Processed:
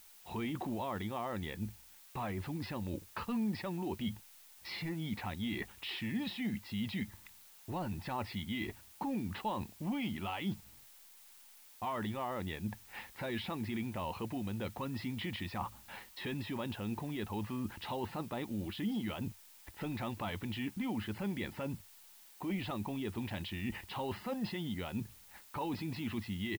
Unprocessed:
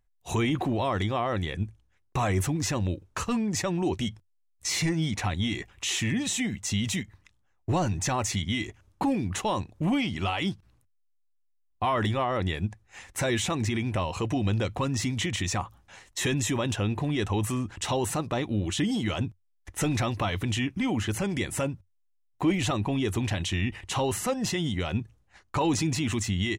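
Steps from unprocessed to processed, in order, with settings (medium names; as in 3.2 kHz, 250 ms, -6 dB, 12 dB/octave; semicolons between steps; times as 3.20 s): resampled via 11.025 kHz; reverse; compression 6:1, threshold -38 dBFS, peak gain reduction 17 dB; reverse; added noise blue -55 dBFS; tone controls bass -4 dB, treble -5 dB; small resonant body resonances 210/880 Hz, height 8 dB; trim +1 dB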